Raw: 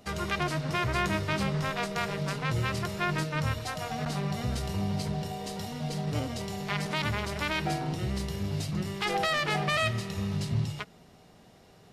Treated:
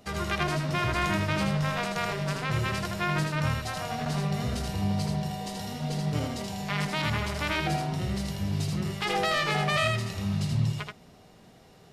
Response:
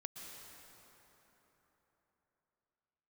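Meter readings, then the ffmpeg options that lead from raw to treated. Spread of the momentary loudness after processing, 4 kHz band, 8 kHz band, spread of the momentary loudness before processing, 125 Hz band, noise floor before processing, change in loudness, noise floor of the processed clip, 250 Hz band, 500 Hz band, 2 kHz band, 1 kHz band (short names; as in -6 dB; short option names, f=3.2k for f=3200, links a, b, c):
6 LU, +1.5 dB, +1.5 dB, 7 LU, +2.5 dB, -56 dBFS, +2.0 dB, -54 dBFS, +2.0 dB, +1.0 dB, +1.5 dB, +1.5 dB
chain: -filter_complex "[0:a]asplit=2[a][b];[1:a]atrim=start_sample=2205,atrim=end_sample=3969,adelay=80[c];[b][c]afir=irnorm=-1:irlink=0,volume=2dB[d];[a][d]amix=inputs=2:normalize=0"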